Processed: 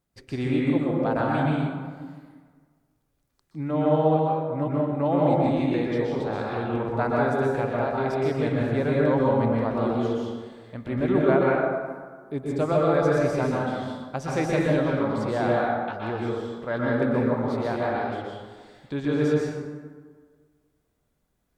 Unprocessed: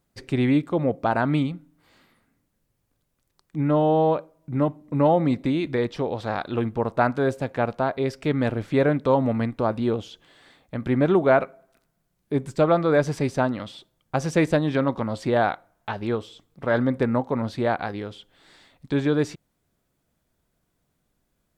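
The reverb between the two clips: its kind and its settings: plate-style reverb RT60 1.6 s, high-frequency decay 0.5×, pre-delay 110 ms, DRR -4.5 dB; trim -7 dB

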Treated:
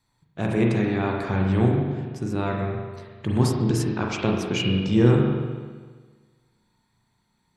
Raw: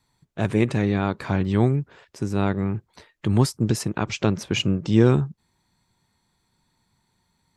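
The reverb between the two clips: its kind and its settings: spring tank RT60 1.5 s, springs 33/42 ms, chirp 35 ms, DRR -1 dB; trim -3.5 dB

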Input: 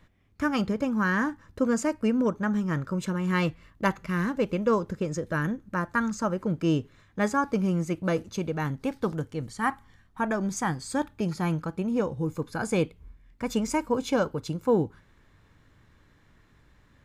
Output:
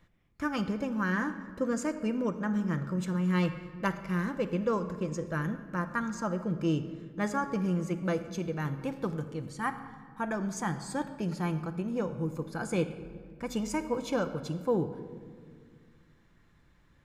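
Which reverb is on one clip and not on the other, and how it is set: simulated room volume 2800 m³, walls mixed, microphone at 0.8 m; trim -5.5 dB

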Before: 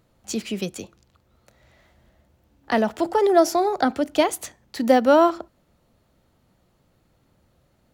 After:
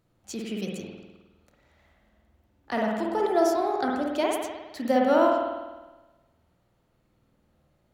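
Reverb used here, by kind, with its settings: spring tank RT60 1.2 s, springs 51 ms, chirp 75 ms, DRR -1.5 dB; trim -8.5 dB

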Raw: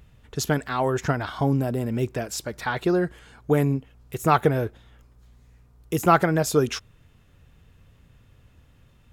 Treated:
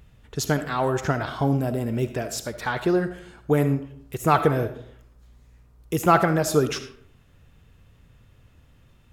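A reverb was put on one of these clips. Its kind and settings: algorithmic reverb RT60 0.63 s, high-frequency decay 0.6×, pre-delay 25 ms, DRR 10 dB

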